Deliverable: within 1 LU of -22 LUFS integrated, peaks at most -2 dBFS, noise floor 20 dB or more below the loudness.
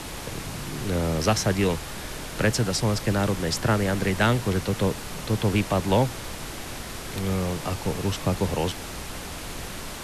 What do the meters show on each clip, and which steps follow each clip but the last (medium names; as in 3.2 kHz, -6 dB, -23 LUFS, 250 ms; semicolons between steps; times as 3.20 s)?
noise floor -36 dBFS; noise floor target -47 dBFS; loudness -26.5 LUFS; peak level -8.5 dBFS; loudness target -22.0 LUFS
-> noise print and reduce 11 dB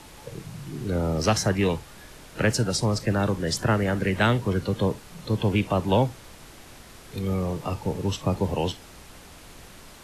noise floor -47 dBFS; loudness -25.5 LUFS; peak level -9.0 dBFS; loudness target -22.0 LUFS
-> trim +3.5 dB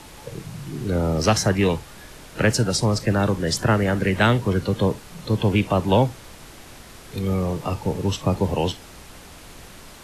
loudness -22.0 LUFS; peak level -5.5 dBFS; noise floor -44 dBFS